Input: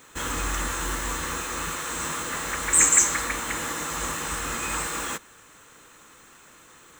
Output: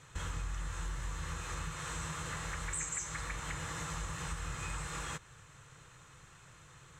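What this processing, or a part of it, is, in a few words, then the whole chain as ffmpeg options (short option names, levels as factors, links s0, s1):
jukebox: -af "lowpass=7900,lowshelf=f=180:t=q:w=3:g=10,acompressor=threshold=0.0316:ratio=5,volume=0.473"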